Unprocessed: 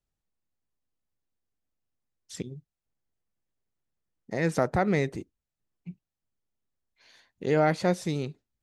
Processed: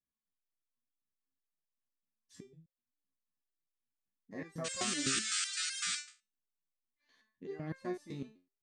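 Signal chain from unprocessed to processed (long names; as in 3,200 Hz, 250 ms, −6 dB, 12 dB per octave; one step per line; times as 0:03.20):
hollow resonant body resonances 240/1,100/1,700 Hz, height 14 dB, ringing for 35 ms
sound drawn into the spectrogram noise, 0:04.64–0:05.99, 1,200–9,100 Hz −17 dBFS
step-sequenced resonator 7.9 Hz 67–530 Hz
level −8 dB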